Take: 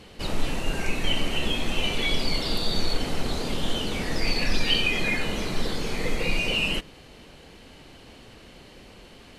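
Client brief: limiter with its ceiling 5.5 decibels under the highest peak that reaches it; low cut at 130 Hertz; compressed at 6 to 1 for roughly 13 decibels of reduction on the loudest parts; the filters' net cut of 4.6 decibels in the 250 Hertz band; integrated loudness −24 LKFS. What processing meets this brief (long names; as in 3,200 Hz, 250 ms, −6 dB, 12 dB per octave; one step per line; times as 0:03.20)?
high-pass filter 130 Hz
parametric band 250 Hz −5.5 dB
downward compressor 6 to 1, threshold −35 dBFS
level +14 dB
brickwall limiter −16 dBFS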